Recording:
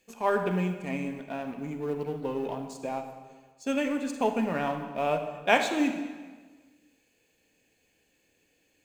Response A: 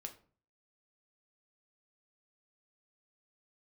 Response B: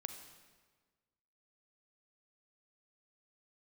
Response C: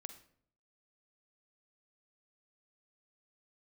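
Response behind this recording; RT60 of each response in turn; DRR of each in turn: B; 0.45, 1.5, 0.60 seconds; 4.0, 7.0, 9.0 decibels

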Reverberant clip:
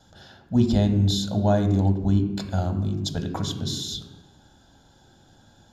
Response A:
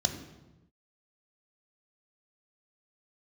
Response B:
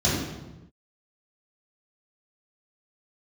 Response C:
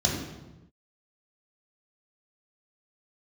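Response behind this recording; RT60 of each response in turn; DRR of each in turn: A; non-exponential decay, non-exponential decay, non-exponential decay; 5.5, −9.0, −2.5 decibels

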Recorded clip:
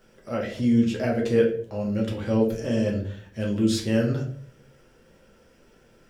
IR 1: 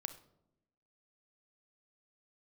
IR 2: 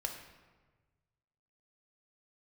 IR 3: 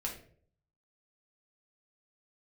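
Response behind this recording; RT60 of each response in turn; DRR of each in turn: 3; 0.85, 1.4, 0.55 seconds; 9.5, 3.0, −2.0 decibels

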